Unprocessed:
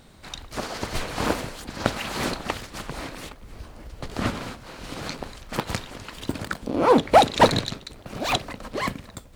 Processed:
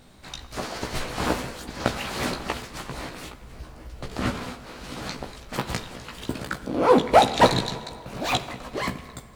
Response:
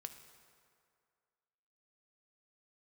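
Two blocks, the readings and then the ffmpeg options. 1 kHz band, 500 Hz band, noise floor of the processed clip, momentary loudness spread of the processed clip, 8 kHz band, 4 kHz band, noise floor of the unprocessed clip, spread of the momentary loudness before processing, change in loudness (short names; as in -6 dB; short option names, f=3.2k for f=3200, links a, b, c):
-0.5 dB, 0.0 dB, -46 dBFS, 20 LU, -0.5 dB, -0.5 dB, -47 dBFS, 21 LU, -0.5 dB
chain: -filter_complex "[0:a]asplit=2[a][b];[1:a]atrim=start_sample=2205,adelay=16[c];[b][c]afir=irnorm=-1:irlink=0,volume=1dB[d];[a][d]amix=inputs=2:normalize=0,volume=-2dB"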